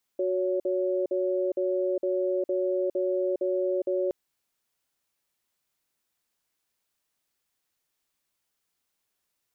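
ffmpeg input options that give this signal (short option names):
-f lavfi -i "aevalsrc='0.0473*(sin(2*PI*368*t)+sin(2*PI*561*t))*clip(min(mod(t,0.46),0.41-mod(t,0.46))/0.005,0,1)':d=3.92:s=44100"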